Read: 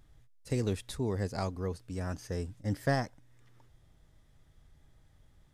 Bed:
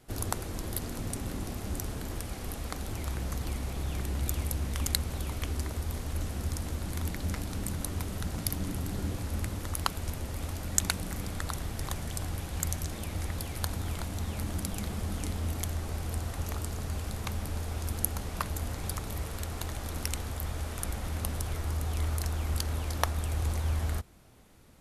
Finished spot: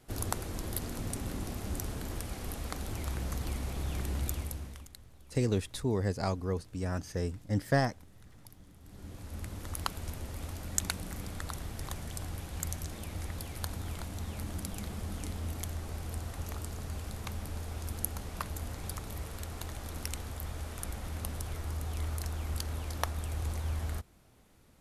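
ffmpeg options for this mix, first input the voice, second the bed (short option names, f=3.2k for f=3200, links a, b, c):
-filter_complex "[0:a]adelay=4850,volume=2dB[a];[1:a]volume=17.5dB,afade=t=out:st=4.17:d=0.71:silence=0.0794328,afade=t=in:st=8.8:d=0.97:silence=0.112202[b];[a][b]amix=inputs=2:normalize=0"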